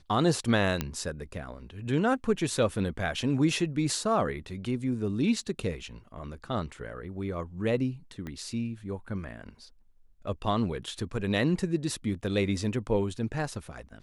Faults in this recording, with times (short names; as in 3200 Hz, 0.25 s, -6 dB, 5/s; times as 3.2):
0.81 pop -13 dBFS
8.27 pop -25 dBFS